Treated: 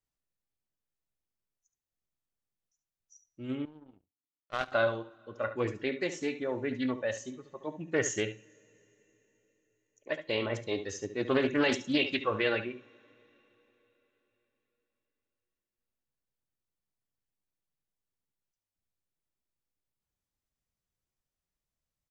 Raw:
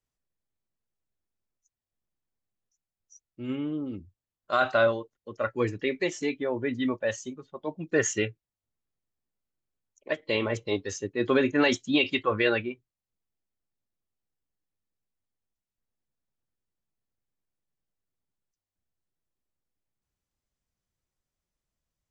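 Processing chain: on a send: echo 71 ms -11.5 dB; on the sum: two-slope reverb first 0.54 s, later 4.2 s, from -19 dB, DRR 15.5 dB; 3.65–4.72 power-law curve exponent 2; Doppler distortion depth 0.19 ms; gain -4.5 dB

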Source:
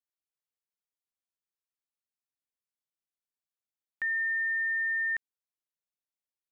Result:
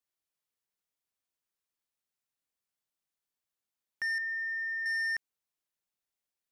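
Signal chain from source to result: soft clip -33 dBFS, distortion -15 dB; 4.18–4.86 air absorption 360 m; gain +3.5 dB

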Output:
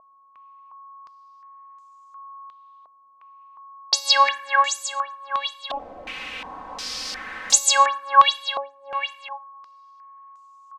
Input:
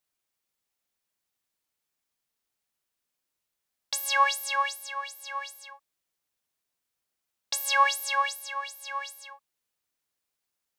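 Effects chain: 5.7–7.58 zero-crossing step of -31 dBFS; comb 3.9 ms, depth 81%; two-slope reverb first 0.58 s, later 3.5 s, from -27 dB, DRR 14.5 dB; whine 1100 Hz -50 dBFS; stepped low-pass 2.8 Hz 660–7000 Hz; gain +3 dB

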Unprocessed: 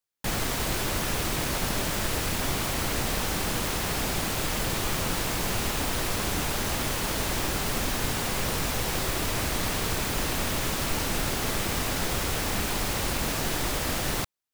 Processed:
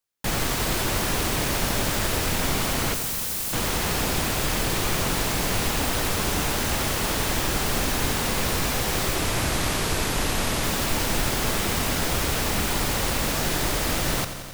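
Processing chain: 2.94–3.53 pre-emphasis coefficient 0.8; 9.15–10.64 brick-wall FIR low-pass 13000 Hz; lo-fi delay 88 ms, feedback 80%, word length 8-bit, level -11 dB; gain +3 dB

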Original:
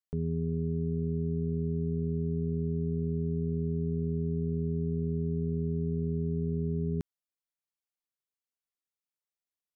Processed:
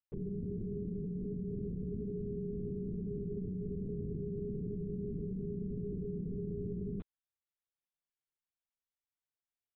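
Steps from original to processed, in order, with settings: HPF 180 Hz 6 dB/oct; LPC vocoder at 8 kHz whisper; gain -4.5 dB

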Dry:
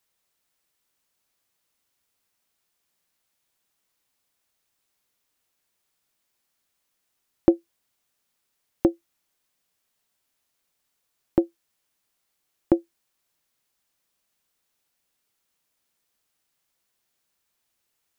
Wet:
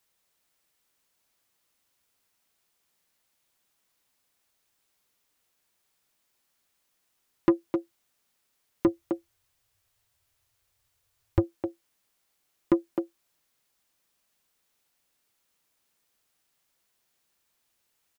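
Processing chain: 8.87–11.44 resonant low shelf 140 Hz +11 dB, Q 3; speakerphone echo 0.26 s, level -8 dB; soft clip -15 dBFS, distortion -9 dB; gain +1.5 dB

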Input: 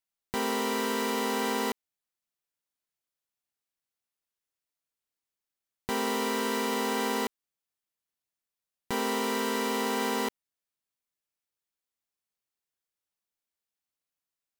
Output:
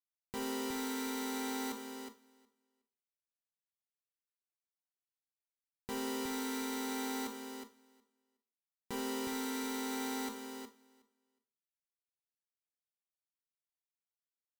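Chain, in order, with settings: bell 1600 Hz -4 dB 2.5 oct; notch 670 Hz, Q 12; on a send: feedback echo 0.366 s, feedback 18%, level -5 dB; on the sum: Schroeder reverb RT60 0.42 s, combs from 27 ms, DRR 7 dB; upward expander 1.5:1, over -52 dBFS; gain -7.5 dB

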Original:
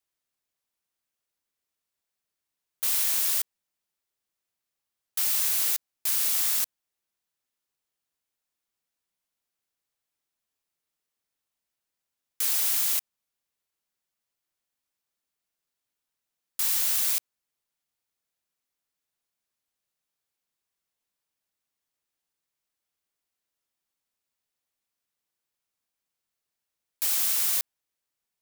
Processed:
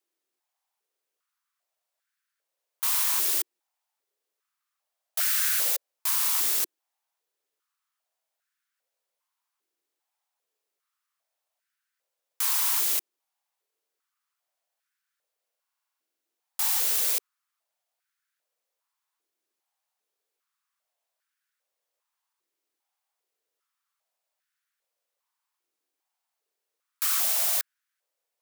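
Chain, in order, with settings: stuck buffer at 15.52, samples 2048, times 14; stepped high-pass 2.5 Hz 350–1500 Hz

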